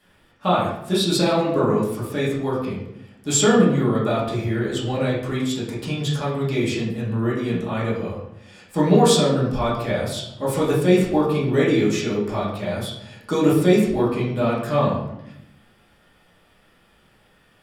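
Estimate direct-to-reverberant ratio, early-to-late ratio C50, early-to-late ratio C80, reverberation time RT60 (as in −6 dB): −8.5 dB, 3.5 dB, 6.5 dB, 0.80 s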